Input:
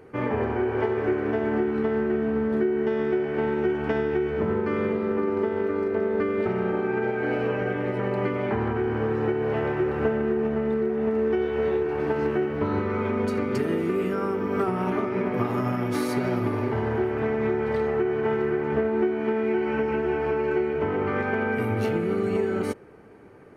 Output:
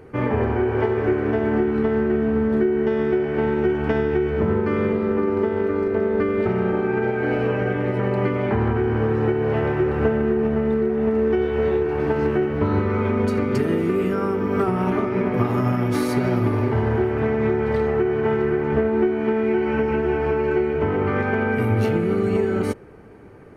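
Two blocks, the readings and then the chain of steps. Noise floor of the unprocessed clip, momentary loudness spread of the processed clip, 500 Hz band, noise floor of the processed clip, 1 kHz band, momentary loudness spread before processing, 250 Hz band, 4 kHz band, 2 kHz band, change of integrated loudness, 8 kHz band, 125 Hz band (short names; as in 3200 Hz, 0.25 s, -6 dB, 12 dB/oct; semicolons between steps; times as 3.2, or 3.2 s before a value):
-29 dBFS, 2 LU, +3.5 dB, -25 dBFS, +3.0 dB, 2 LU, +4.5 dB, +3.0 dB, +3.0 dB, +4.5 dB, n/a, +8.0 dB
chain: low shelf 110 Hz +10.5 dB; gain +3 dB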